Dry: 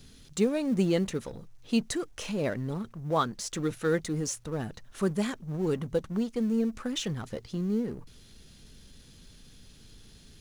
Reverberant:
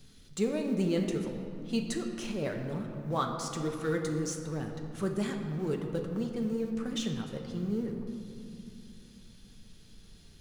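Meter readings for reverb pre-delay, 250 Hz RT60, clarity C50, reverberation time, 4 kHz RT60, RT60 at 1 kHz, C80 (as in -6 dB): 5 ms, 4.0 s, 5.0 dB, 2.7 s, 1.5 s, 2.6 s, 6.5 dB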